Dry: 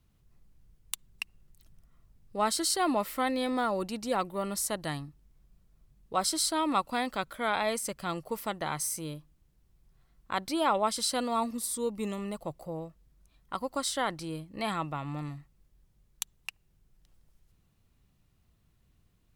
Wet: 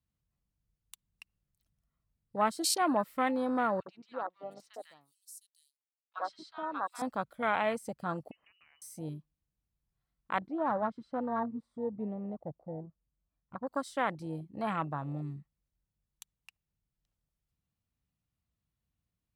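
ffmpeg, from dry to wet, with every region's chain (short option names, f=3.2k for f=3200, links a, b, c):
-filter_complex "[0:a]asettb=1/sr,asplit=3[a][b][c];[a]atrim=end=3.804[d];[b]atrim=start=3.8:end=7.02,asetpts=PTS-STARTPTS,afade=t=in:d=0.004:c=qsin,afade=t=out:st=3.216:d=0.004:c=qsin,highpass=f=1k:p=1,aeval=exprs='sgn(val(0))*max(abs(val(0))-0.00168,0)':c=same,acrossover=split=1300|4700[e][f][g];[e]adelay=60[h];[g]adelay=710[i];[h][f][i]amix=inputs=3:normalize=0,atrim=end_sample=142002[j];[c]atrim=start=7.016[k];[d][j]acrossfade=d=0.004:c1=hsin:c2=qsin[l];[l][k]acrossfade=d=0.004:c1=qsin:c2=hsin,asettb=1/sr,asplit=3[m][n][o];[m]atrim=end=8.314[p];[n]atrim=start=8.31:end=8.82,asetpts=PTS-STARTPTS,afade=t=in:d=0.004:c=qsin,afade=t=out:st=0.506:d=0.004:c=qsin,lowpass=f=2.6k:t=q:w=0.5098,lowpass=f=2.6k:t=q:w=0.6013,lowpass=f=2.6k:t=q:w=0.9,lowpass=f=2.6k:t=q:w=2.563,afreqshift=-3100,acompressor=threshold=-41dB:ratio=4:attack=3.2:release=140:knee=1:detection=peak,tiltshelf=f=840:g=6[q];[o]atrim=start=8.816[r];[p][q]acrossfade=d=0.004:c1=hsin:c2=qsin[s];[s][r]acrossfade=d=0.004:c1=qsin:c2=hsin,asettb=1/sr,asplit=3[t][u][v];[t]atrim=end=10.474[w];[u]atrim=start=10.47:end=13.67,asetpts=PTS-STARTPTS,afade=t=in:d=0.004:c=qsin,afade=t=out:st=3.196:d=0.004:c=qsin,lowpass=1.4k,aeval=exprs='(tanh(12.6*val(0)+0.5)-tanh(0.5))/12.6':c=same[x];[v]atrim=start=13.666[y];[w][x]acrossfade=d=0.004:c1=hsin:c2=qsin[z];[z][y]acrossfade=d=0.004:c1=qsin:c2=hsin,highpass=45,afwtdn=0.0178,equalizer=f=380:w=4.2:g=-5.5"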